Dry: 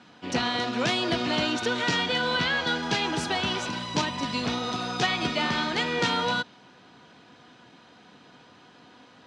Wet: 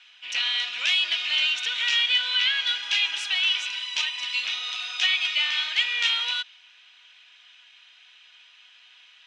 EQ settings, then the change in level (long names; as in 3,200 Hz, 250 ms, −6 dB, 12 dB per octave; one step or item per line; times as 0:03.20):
high-pass with resonance 2,700 Hz, resonance Q 2.5
parametric band 4,500 Hz −6.5 dB 0.27 octaves
high-shelf EQ 8,000 Hz −10.5 dB
+3.0 dB